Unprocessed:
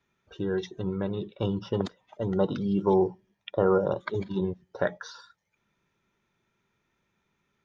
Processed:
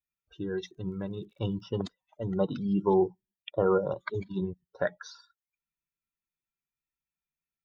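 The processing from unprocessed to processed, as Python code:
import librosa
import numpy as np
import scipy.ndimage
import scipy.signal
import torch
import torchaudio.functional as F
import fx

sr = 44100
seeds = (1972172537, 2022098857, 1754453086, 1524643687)

y = fx.bin_expand(x, sr, power=1.5)
y = fx.dmg_crackle(y, sr, seeds[0], per_s=67.0, level_db=-59.0, at=(0.64, 1.63), fade=0.02)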